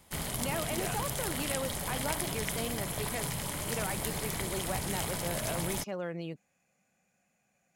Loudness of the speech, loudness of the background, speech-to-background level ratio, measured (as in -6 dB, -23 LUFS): -39.0 LUFS, -34.5 LUFS, -4.5 dB